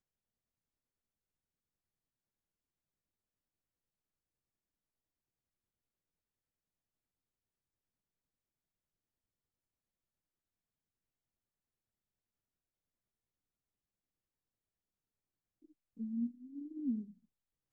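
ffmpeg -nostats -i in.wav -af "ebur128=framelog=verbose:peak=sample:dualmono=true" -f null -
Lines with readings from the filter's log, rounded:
Integrated loudness:
  I:         -38.0 LUFS
  Threshold: -49.4 LUFS
Loudness range:
  LRA:         6.2 LU
  Threshold: -63.1 LUFS
  LRA low:   -47.9 LUFS
  LRA high:  -41.6 LUFS
Sample peak:
  Peak:      -27.7 dBFS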